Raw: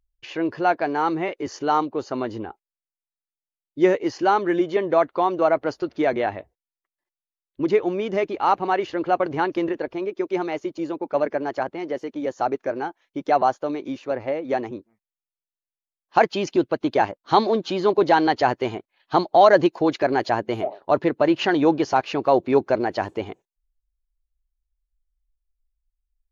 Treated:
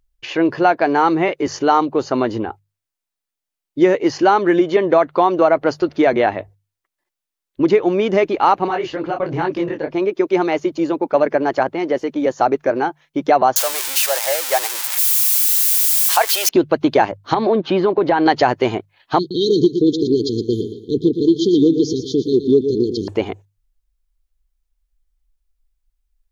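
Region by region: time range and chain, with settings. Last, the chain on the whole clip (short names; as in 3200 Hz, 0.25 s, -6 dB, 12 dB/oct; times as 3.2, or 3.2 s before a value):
8.68–9.94 bell 140 Hz +6 dB 0.76 oct + compressor 2.5:1, threshold -23 dBFS + detuned doubles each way 40 cents
13.56–16.49 switching spikes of -15 dBFS + HPF 620 Hz 24 dB/oct
17.34–18.26 LPF 2600 Hz + compressor, threshold -19 dBFS
19.19–23.08 brick-wall FIR band-stop 480–3100 Hz + feedback echo 0.116 s, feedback 35%, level -10 dB
whole clip: notches 50/100/150 Hz; compressor 3:1, threshold -19 dBFS; maximiser +10 dB; gain -1 dB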